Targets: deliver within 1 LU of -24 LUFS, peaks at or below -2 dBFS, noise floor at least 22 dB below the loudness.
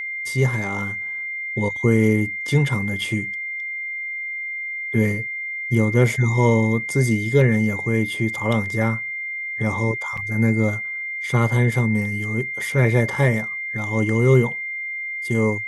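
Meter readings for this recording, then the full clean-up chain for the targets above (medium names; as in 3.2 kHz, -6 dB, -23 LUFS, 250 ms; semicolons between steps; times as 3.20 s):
dropouts 1; longest dropout 5.1 ms; steady tone 2.1 kHz; tone level -26 dBFS; loudness -21.0 LUFS; peak level -4.0 dBFS; loudness target -24.0 LUFS
-> interpolate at 10.17 s, 5.1 ms; band-stop 2.1 kHz, Q 30; trim -3 dB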